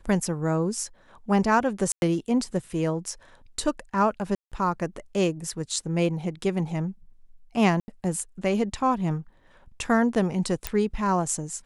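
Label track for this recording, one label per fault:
1.920000	2.020000	dropout 101 ms
4.350000	4.520000	dropout 167 ms
7.800000	7.880000	dropout 80 ms
10.670000	10.670000	pop -9 dBFS

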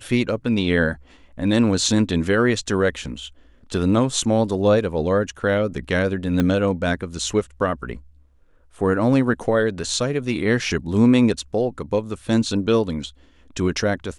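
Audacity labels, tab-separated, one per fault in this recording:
6.400000	6.400000	pop -9 dBFS

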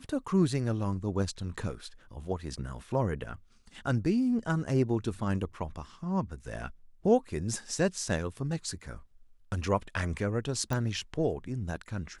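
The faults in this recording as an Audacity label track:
10.730000	10.730000	pop

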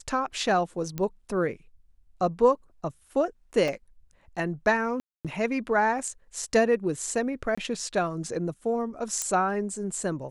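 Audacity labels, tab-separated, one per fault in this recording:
0.980000	0.980000	pop -17 dBFS
3.680000	3.680000	dropout 2.6 ms
5.000000	5.250000	dropout 247 ms
7.550000	7.580000	dropout 25 ms
9.220000	9.220000	pop -14 dBFS

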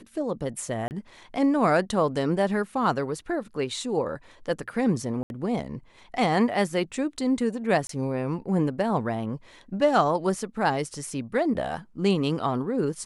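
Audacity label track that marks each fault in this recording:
0.880000	0.910000	dropout 29 ms
5.230000	5.300000	dropout 71 ms
7.870000	7.890000	dropout 23 ms

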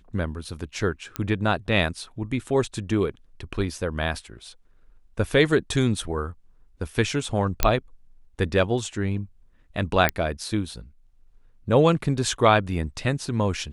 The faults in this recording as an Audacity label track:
1.160000	1.160000	pop -12 dBFS
7.630000	7.630000	pop -3 dBFS
10.090000	10.090000	pop -5 dBFS

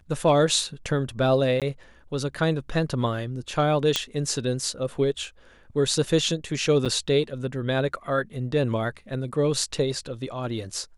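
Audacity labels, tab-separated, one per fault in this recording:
1.600000	1.620000	dropout 17 ms
3.960000	3.960000	pop -7 dBFS
6.850000	6.860000	dropout 6.7 ms

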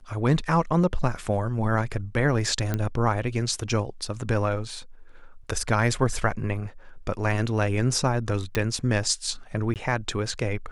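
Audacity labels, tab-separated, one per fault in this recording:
2.740000	2.740000	pop -13 dBFS
8.550000	8.550000	pop -10 dBFS
9.740000	9.760000	dropout 18 ms

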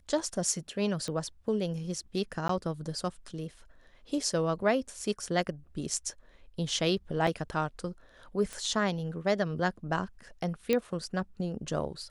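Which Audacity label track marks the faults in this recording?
1.080000	1.080000	pop -23 dBFS
2.480000	2.490000	dropout 13 ms
7.270000	7.270000	dropout 3 ms
8.530000	8.530000	pop -24 dBFS
10.730000	10.730000	pop -13 dBFS

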